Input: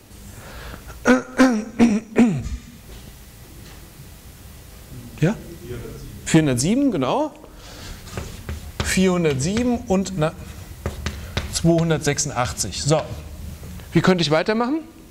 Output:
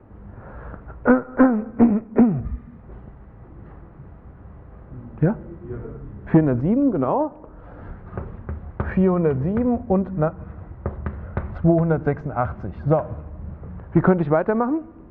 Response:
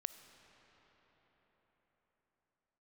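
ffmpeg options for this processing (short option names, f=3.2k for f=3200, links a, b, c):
-af "lowpass=f=1.4k:w=0.5412,lowpass=f=1.4k:w=1.3066"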